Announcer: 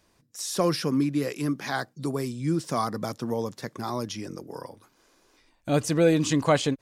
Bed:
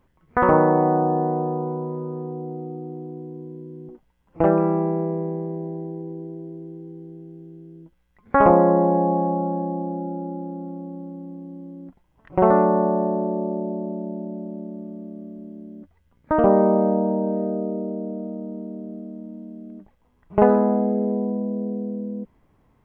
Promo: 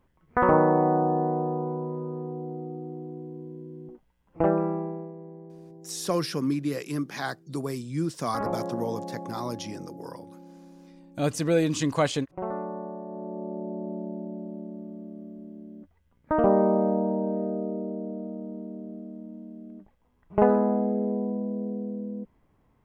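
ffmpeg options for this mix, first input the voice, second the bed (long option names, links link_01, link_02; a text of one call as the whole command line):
ffmpeg -i stem1.wav -i stem2.wav -filter_complex "[0:a]adelay=5500,volume=-2.5dB[link_01];[1:a]volume=8.5dB,afade=type=out:start_time=4.3:duration=0.83:silence=0.223872,afade=type=in:start_time=13.06:duration=0.9:silence=0.251189[link_02];[link_01][link_02]amix=inputs=2:normalize=0" out.wav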